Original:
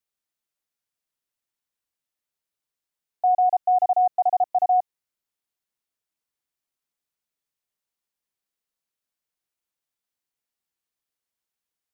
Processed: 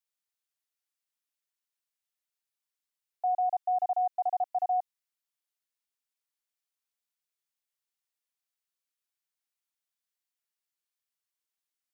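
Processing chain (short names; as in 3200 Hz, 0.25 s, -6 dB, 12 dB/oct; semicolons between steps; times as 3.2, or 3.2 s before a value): HPF 1300 Hz 6 dB/oct; gain -2.5 dB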